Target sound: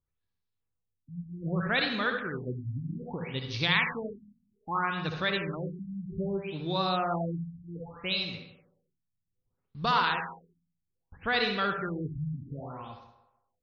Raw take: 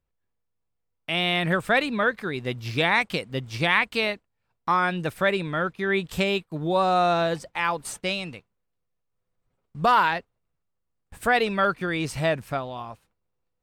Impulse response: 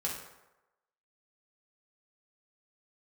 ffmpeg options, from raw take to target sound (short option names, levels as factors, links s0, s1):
-filter_complex "[0:a]equalizer=f=100:t=o:w=0.67:g=5,equalizer=f=630:t=o:w=0.67:g=-6,equalizer=f=4000:t=o:w=0.67:g=11,asplit=2[s0][s1];[1:a]atrim=start_sample=2205,adelay=64[s2];[s1][s2]afir=irnorm=-1:irlink=0,volume=0.422[s3];[s0][s3]amix=inputs=2:normalize=0,afftfilt=real='re*lt(b*sr/1024,260*pow(6800/260,0.5+0.5*sin(2*PI*0.63*pts/sr)))':imag='im*lt(b*sr/1024,260*pow(6800/260,0.5+0.5*sin(2*PI*0.63*pts/sr)))':win_size=1024:overlap=0.75,volume=0.447"